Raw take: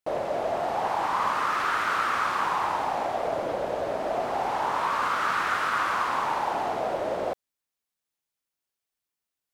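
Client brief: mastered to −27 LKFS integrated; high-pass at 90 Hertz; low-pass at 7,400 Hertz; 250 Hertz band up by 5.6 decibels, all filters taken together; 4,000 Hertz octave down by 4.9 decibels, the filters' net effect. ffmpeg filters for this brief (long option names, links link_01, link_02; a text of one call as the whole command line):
ffmpeg -i in.wav -af "highpass=90,lowpass=7400,equalizer=frequency=250:width_type=o:gain=7.5,equalizer=frequency=4000:width_type=o:gain=-6.5" out.wav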